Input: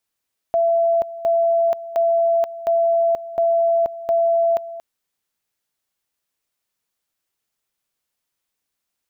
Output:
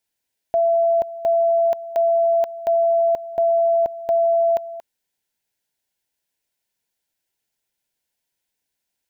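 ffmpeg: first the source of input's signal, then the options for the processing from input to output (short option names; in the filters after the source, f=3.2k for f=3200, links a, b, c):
-f lavfi -i "aevalsrc='pow(10,(-14-15.5*gte(mod(t,0.71),0.48))/20)*sin(2*PI*672*t)':d=4.26:s=44100"
-af "asuperstop=centerf=1200:order=4:qfactor=3.7"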